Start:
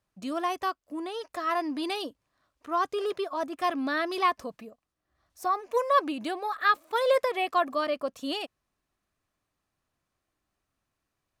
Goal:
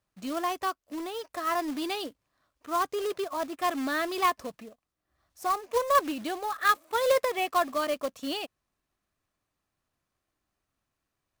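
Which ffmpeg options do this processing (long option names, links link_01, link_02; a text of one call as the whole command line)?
ffmpeg -i in.wav -af "aeval=exprs='0.266*(cos(1*acos(clip(val(0)/0.266,-1,1)))-cos(1*PI/2))+0.00841*(cos(3*acos(clip(val(0)/0.266,-1,1)))-cos(3*PI/2))':channel_layout=same,acrusher=bits=3:mode=log:mix=0:aa=0.000001" out.wav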